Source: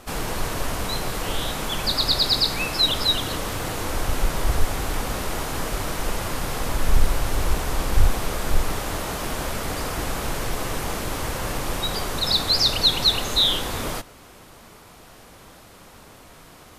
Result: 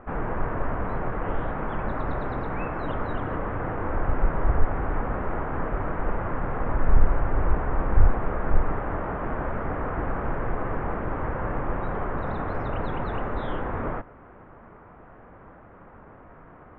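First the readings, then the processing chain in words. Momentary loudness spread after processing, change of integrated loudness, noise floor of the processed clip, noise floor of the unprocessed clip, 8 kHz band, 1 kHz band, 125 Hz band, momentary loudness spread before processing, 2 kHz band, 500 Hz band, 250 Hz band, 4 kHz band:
23 LU, -5.5 dB, -49 dBFS, -47 dBFS, under -40 dB, 0.0 dB, 0.0 dB, 10 LU, -4.5 dB, 0.0 dB, 0.0 dB, under -30 dB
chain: inverse Chebyshev low-pass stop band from 4300 Hz, stop band 50 dB

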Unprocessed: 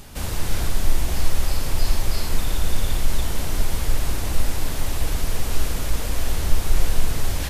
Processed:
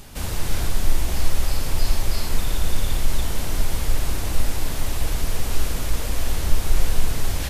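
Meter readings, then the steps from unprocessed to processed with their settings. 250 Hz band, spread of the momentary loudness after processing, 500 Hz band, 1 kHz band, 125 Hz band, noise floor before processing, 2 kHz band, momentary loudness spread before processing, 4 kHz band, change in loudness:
-0.5 dB, 2 LU, -0.5 dB, -0.5 dB, -0.5 dB, -27 dBFS, 0.0 dB, 2 LU, 0.0 dB, 0.0 dB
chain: de-hum 71.16 Hz, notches 28

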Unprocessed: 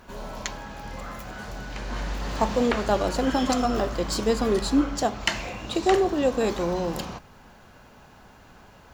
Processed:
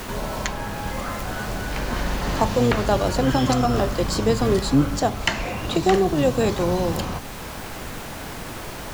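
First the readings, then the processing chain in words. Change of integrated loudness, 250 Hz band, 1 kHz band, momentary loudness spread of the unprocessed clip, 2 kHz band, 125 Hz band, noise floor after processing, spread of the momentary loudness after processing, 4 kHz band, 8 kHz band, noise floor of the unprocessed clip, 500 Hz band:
+3.0 dB, +3.5 dB, +3.5 dB, 15 LU, +4.5 dB, +10.5 dB, -34 dBFS, 14 LU, +3.5 dB, +3.5 dB, -51 dBFS, +3.0 dB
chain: octaver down 1 oct, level -2 dB; added noise pink -43 dBFS; three-band squash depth 40%; gain +3 dB

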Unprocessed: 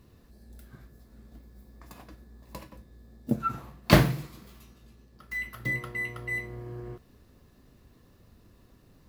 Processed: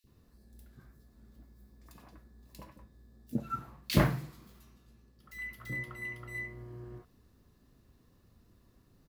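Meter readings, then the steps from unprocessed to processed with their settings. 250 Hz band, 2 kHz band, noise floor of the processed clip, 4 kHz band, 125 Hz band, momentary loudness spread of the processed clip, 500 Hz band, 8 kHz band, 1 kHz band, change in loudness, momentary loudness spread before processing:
-6.5 dB, -7.5 dB, -66 dBFS, -7.0 dB, -6.0 dB, 25 LU, -8.5 dB, -6.0 dB, -7.5 dB, -7.0 dB, 25 LU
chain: three bands offset in time highs, lows, mids 40/70 ms, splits 560/2400 Hz; gain -6 dB

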